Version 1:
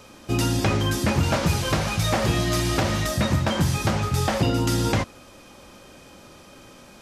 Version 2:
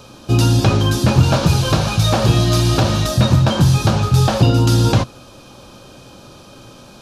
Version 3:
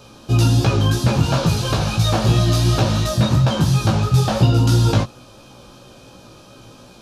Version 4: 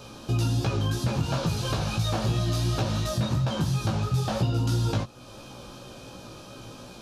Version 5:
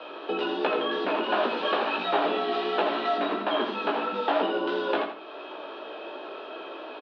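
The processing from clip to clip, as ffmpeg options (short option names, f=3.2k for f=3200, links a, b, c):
-af "equalizer=f=125:t=o:w=0.33:g=9,equalizer=f=2k:t=o:w=0.33:g=-12,equalizer=f=4k:t=o:w=0.33:g=4,equalizer=f=8k:t=o:w=0.33:g=-4,equalizer=f=12.5k:t=o:w=0.33:g=-4,volume=6dB"
-af "flanger=delay=16:depth=3:speed=2.9"
-af "acompressor=threshold=-31dB:ratio=2"
-af "aecho=1:1:82|164|246:0.447|0.121|0.0326,highpass=f=270:t=q:w=0.5412,highpass=f=270:t=q:w=1.307,lowpass=f=3.2k:t=q:w=0.5176,lowpass=f=3.2k:t=q:w=0.7071,lowpass=f=3.2k:t=q:w=1.932,afreqshift=74,volume=6.5dB"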